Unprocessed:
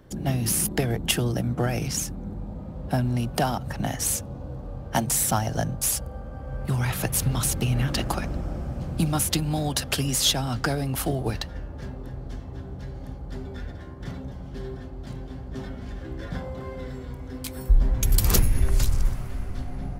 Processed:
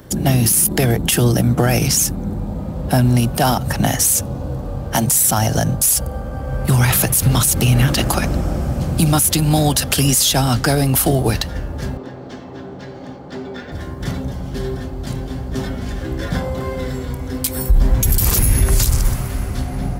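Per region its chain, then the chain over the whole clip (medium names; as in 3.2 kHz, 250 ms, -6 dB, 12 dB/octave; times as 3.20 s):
11.97–13.72 s: high-pass 230 Hz + careless resampling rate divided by 2×, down filtered, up hold + distance through air 110 m
whole clip: high-pass 42 Hz 12 dB/octave; treble shelf 6.1 kHz +11 dB; loudness maximiser +15.5 dB; trim -4 dB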